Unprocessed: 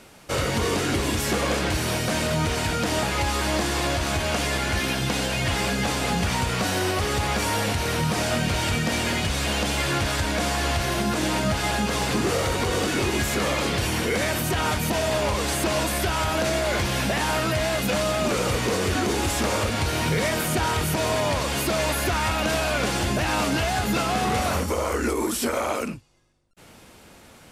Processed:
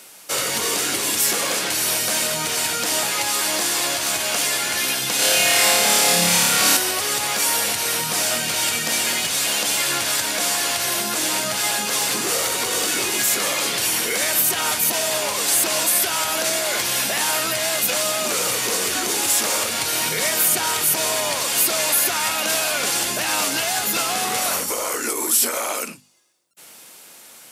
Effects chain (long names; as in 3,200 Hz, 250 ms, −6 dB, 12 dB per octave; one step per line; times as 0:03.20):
high-pass filter 100 Hz 24 dB per octave
RIAA equalisation recording
mains-hum notches 50/100/150/200/250 Hz
0:05.16–0:06.77: flutter between parallel walls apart 4.9 metres, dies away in 1.3 s